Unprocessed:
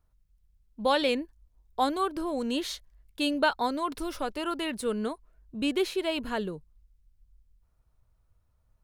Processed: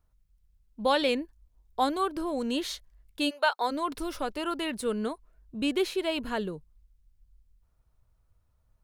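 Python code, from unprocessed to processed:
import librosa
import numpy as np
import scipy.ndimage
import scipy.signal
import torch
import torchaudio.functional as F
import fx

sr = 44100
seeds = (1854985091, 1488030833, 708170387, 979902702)

y = fx.highpass(x, sr, hz=fx.line((3.29, 820.0), (3.7, 290.0)), slope=24, at=(3.29, 3.7), fade=0.02)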